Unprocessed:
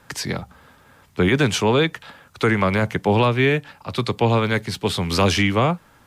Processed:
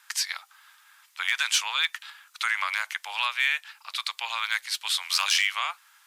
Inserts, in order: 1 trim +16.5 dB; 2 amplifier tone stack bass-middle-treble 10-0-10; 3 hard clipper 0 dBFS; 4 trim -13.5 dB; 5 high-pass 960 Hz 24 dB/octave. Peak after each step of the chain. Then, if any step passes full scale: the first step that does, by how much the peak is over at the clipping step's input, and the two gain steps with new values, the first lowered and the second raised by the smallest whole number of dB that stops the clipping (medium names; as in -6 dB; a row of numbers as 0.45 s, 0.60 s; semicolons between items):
+10.0 dBFS, +6.0 dBFS, 0.0 dBFS, -13.5 dBFS, -9.5 dBFS; step 1, 6.0 dB; step 1 +10.5 dB, step 4 -7.5 dB